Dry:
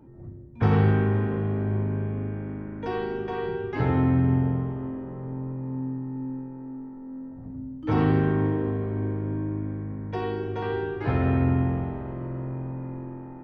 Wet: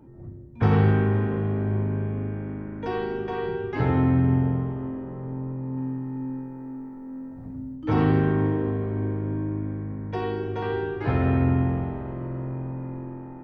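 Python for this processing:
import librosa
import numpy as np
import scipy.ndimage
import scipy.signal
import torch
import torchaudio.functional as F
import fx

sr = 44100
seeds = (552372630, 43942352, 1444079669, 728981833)

y = fx.high_shelf(x, sr, hz=2000.0, db=9.5, at=(5.77, 7.76))
y = y * librosa.db_to_amplitude(1.0)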